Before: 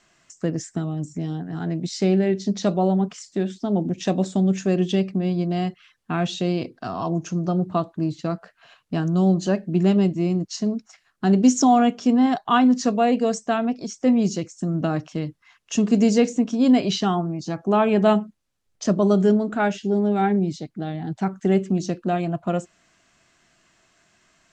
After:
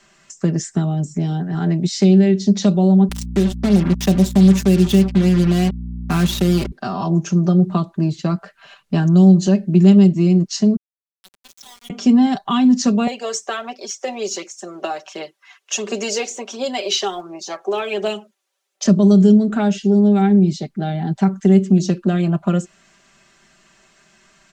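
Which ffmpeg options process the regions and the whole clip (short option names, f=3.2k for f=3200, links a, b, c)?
-filter_complex "[0:a]asettb=1/sr,asplit=3[a][b][c];[a]atrim=end=3.094[d];[b]atrim=start=3.09:end=6.72,asetpts=PTS-STARTPTS,afade=t=in:d=0.004:c=qsin,afade=t=out:st=3.626:d=0.004:c=qsin,acrusher=bits=4:mix=0:aa=0.5,acompressor=mode=upward:threshold=-29dB:ratio=2.5:attack=3.2:release=140:knee=2.83:detection=peak,aeval=exprs='val(0)+0.0251*(sin(2*PI*60*n/s)+sin(2*PI*2*60*n/s)/2+sin(2*PI*3*60*n/s)/3+sin(2*PI*4*60*n/s)/4+sin(2*PI*5*60*n/s)/5)':c=same[e];[c]atrim=start=6.716[f];[d][e]acrossfade=d=0.004:c1=hsin:c2=qsin[g];[g][f]acrossfade=d=0.004:c1=qsin:c2=hsin,asettb=1/sr,asplit=3[h][i][j];[h]atrim=end=10.764[k];[i]atrim=start=10.76:end=11.9,asetpts=PTS-STARTPTS,afade=t=in:d=0.004:c=qsin,afade=t=out:st=1.136:d=0.004:c=qsin,bandpass=f=3.6k:t=q:w=9.6,aeval=exprs='val(0)*gte(abs(val(0)),0.00841)':c=same[l];[j]atrim=start=11.896[m];[k][l]acrossfade=d=0.004:c1=hsin:c2=qsin[n];[n][m]acrossfade=d=0.004:c1=qsin:c2=hsin,asettb=1/sr,asplit=3[o][p][q];[o]atrim=end=13.074[r];[p]atrim=start=13.07:end=18.85,asetpts=PTS-STARTPTS,afade=t=in:d=0.004:c=qsin,afade=t=out:st=5.776:d=0.004:c=qsin,highpass=f=440:w=0.5412,highpass=f=440:w=1.3066,aecho=1:1:5.4:0.32,atrim=end_sample=254898,aphaser=in_gain=1:out_gain=1:delay=3:decay=0.38:speed=1.4:type=triangular[s];[q]atrim=start=18.846[t];[r][s]acrossfade=d=0.004:c1=hsin:c2=qsin[u];[u][t]acrossfade=d=0.004:c1=qsin:c2=hsin,aecho=1:1:5.1:0.68,acrossover=split=300|3000[v][w][x];[w]acompressor=threshold=-28dB:ratio=6[y];[v][y][x]amix=inputs=3:normalize=0,volume=5.5dB"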